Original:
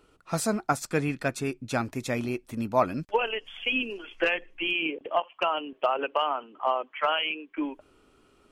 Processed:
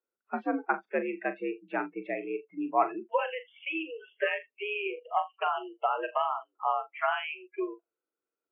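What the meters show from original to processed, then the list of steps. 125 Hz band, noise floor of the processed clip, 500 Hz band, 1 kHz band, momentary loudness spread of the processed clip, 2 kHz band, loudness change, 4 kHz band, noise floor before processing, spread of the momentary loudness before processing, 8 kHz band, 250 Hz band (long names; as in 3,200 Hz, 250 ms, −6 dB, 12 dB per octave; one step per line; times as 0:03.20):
below −20 dB, below −85 dBFS, −3.5 dB, −1.0 dB, 7 LU, −4.0 dB, −3.5 dB, −11.5 dB, −62 dBFS, 7 LU, below −40 dB, −5.0 dB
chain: single-sideband voice off tune +67 Hz 160–2,400 Hz
flutter between parallel walls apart 7 metres, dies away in 0.23 s
noise reduction from a noise print of the clip's start 29 dB
level −2.5 dB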